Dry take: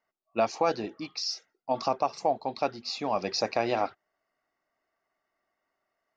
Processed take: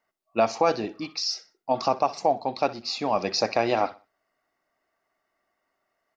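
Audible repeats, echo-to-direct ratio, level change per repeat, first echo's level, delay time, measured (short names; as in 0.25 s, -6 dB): 2, -17.5 dB, -10.5 dB, -18.0 dB, 62 ms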